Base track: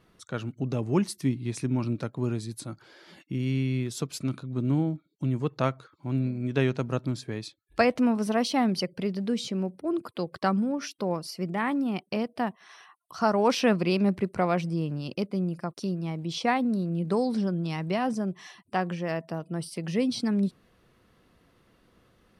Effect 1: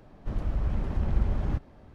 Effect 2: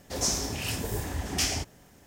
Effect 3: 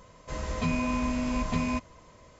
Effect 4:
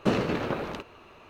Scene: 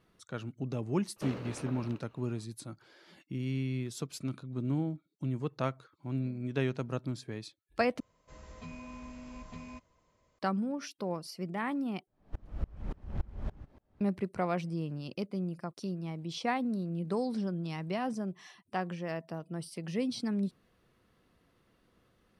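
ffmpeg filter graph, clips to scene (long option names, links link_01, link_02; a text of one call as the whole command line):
ffmpeg -i bed.wav -i cue0.wav -i cue1.wav -i cue2.wav -i cue3.wav -filter_complex "[0:a]volume=-6.5dB[link_01];[1:a]aeval=exprs='val(0)*pow(10,-30*if(lt(mod(-3.5*n/s,1),2*abs(-3.5)/1000),1-mod(-3.5*n/s,1)/(2*abs(-3.5)/1000),(mod(-3.5*n/s,1)-2*abs(-3.5)/1000)/(1-2*abs(-3.5)/1000))/20)':channel_layout=same[link_02];[link_01]asplit=3[link_03][link_04][link_05];[link_03]atrim=end=8.004[link_06];[3:a]atrim=end=2.39,asetpts=PTS-STARTPTS,volume=-17.5dB[link_07];[link_04]atrim=start=10.386:end=12.074[link_08];[link_02]atrim=end=1.94,asetpts=PTS-STARTPTS,volume=-2.5dB[link_09];[link_05]atrim=start=14.006[link_10];[4:a]atrim=end=1.29,asetpts=PTS-STARTPTS,volume=-15dB,afade=type=in:duration=0.004:curve=hsin,afade=type=out:start_time=1.286:duration=0.004:curve=hsin,adelay=1160[link_11];[link_06][link_07]acrossfade=duration=0.004:curve1=hsin:curve2=hsin[link_12];[link_12][link_08]acrossfade=duration=0.004:curve1=hsin:curve2=hsin[link_13];[link_13][link_09]acrossfade=duration=0.004:curve1=hsin:curve2=hsin[link_14];[link_14][link_10]acrossfade=duration=0.004:curve1=hsin:curve2=hsin[link_15];[link_15][link_11]amix=inputs=2:normalize=0" out.wav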